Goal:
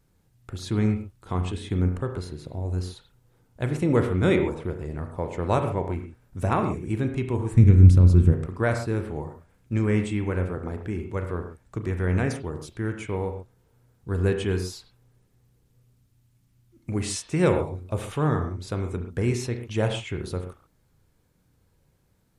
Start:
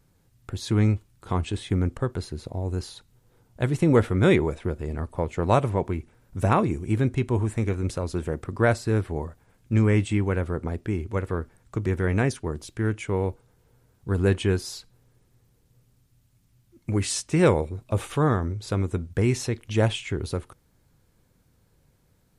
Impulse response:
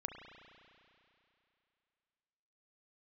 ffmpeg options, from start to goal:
-filter_complex "[0:a]asplit=3[s0][s1][s2];[s0]afade=t=out:st=7.51:d=0.02[s3];[s1]asubboost=boost=11:cutoff=220,afade=t=in:st=7.51:d=0.02,afade=t=out:st=8.32:d=0.02[s4];[s2]afade=t=in:st=8.32:d=0.02[s5];[s3][s4][s5]amix=inputs=3:normalize=0[s6];[1:a]atrim=start_sample=2205,atrim=end_sample=6174[s7];[s6][s7]afir=irnorm=-1:irlink=0"

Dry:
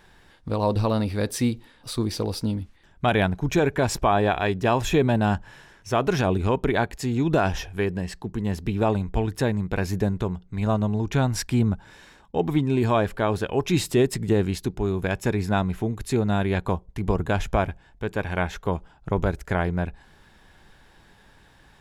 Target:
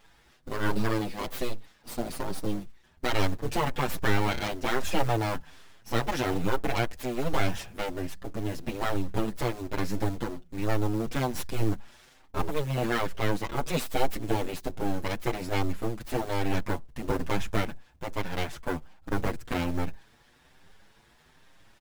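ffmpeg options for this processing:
-filter_complex "[0:a]aeval=exprs='abs(val(0))':c=same,acrusher=bits=6:mode=log:mix=0:aa=0.000001,asplit=2[s0][s1];[s1]adelay=6.9,afreqshift=1.2[s2];[s0][s2]amix=inputs=2:normalize=1"

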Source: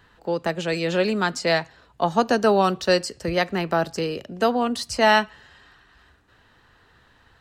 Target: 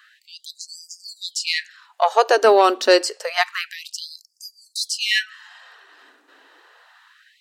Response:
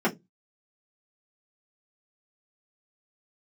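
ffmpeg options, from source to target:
-af "bandreject=f=60:t=h:w=6,bandreject=f=120:t=h:w=6,bandreject=f=180:t=h:w=6,bandreject=f=240:t=h:w=6,acontrast=62,afftfilt=real='re*gte(b*sr/1024,230*pow(4700/230,0.5+0.5*sin(2*PI*0.28*pts/sr)))':imag='im*gte(b*sr/1024,230*pow(4700/230,0.5+0.5*sin(2*PI*0.28*pts/sr)))':win_size=1024:overlap=0.75"

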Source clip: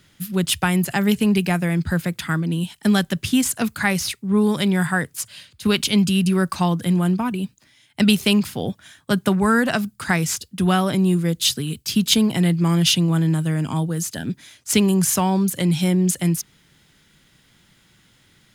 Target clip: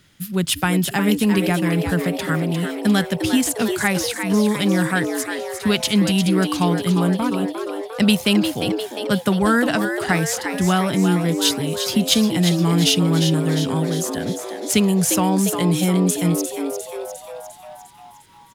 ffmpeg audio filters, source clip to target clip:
-filter_complex "[0:a]asplit=8[s0][s1][s2][s3][s4][s5][s6][s7];[s1]adelay=352,afreqshift=110,volume=0.422[s8];[s2]adelay=704,afreqshift=220,volume=0.245[s9];[s3]adelay=1056,afreqshift=330,volume=0.141[s10];[s4]adelay=1408,afreqshift=440,volume=0.0822[s11];[s5]adelay=1760,afreqshift=550,volume=0.0479[s12];[s6]adelay=2112,afreqshift=660,volume=0.0275[s13];[s7]adelay=2464,afreqshift=770,volume=0.016[s14];[s0][s8][s9][s10][s11][s12][s13][s14]amix=inputs=8:normalize=0"

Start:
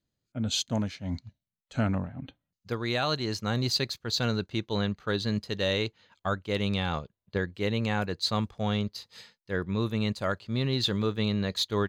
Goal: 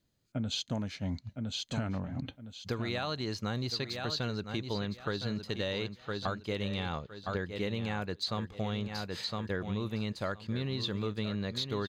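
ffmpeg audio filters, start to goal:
-filter_complex "[0:a]acrossover=split=5300[s0][s1];[s1]acompressor=threshold=0.00501:ratio=4:attack=1:release=60[s2];[s0][s2]amix=inputs=2:normalize=0,aecho=1:1:1011|2022|3033:0.299|0.0716|0.0172,acompressor=threshold=0.0126:ratio=6,volume=2"

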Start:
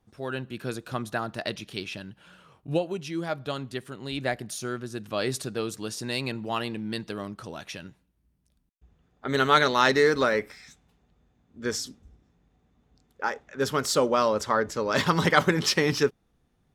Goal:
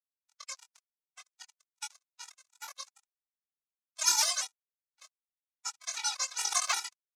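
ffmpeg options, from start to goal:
-af "afwtdn=0.0282,aderivative,dynaudnorm=f=250:g=3:m=5.01,acrusher=bits=8:dc=4:mix=0:aa=0.000001,aeval=exprs='abs(val(0))':c=same,aecho=1:1:52.48|180.8:0.708|0.251,aeval=exprs='sgn(val(0))*max(abs(val(0))-0.0299,0)':c=same,highpass=f=370:w=0.5412,highpass=f=370:w=1.3066,equalizer=f=750:t=q:w=4:g=-7,equalizer=f=1300:t=q:w=4:g=-5,equalizer=f=2700:t=q:w=4:g=6,lowpass=f=3800:w=0.5412,lowpass=f=3800:w=1.3066,asetrate=103194,aresample=44100,afftfilt=real='re*gt(sin(2*PI*2.6*pts/sr)*(1-2*mod(floor(b*sr/1024/250),2)),0)':imag='im*gt(sin(2*PI*2.6*pts/sr)*(1-2*mod(floor(b*sr/1024/250),2)),0)':win_size=1024:overlap=0.75,volume=1.26"

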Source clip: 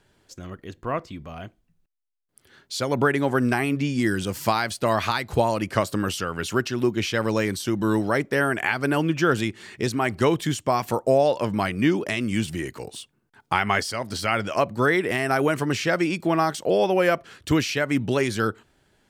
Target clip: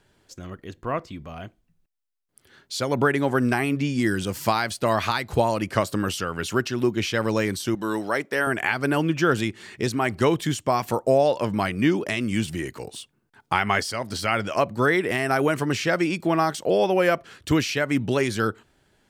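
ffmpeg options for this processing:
-filter_complex "[0:a]asettb=1/sr,asplit=3[s0][s1][s2];[s0]atrim=end=7.754[s3];[s1]atrim=start=7.75:end=8.47,asetpts=PTS-STARTPTS,afade=t=in:d=0.004:c=qsin,afade=t=out:st=0.716:d=0.004:c=qsin,highpass=f=460:p=1[s4];[s2]atrim=start=8.466[s5];[s3][s4]acrossfade=d=0.004:c1=hsin:c2=qsin[s6];[s6][s5]acrossfade=d=0.004:c1=qsin:c2=hsin"

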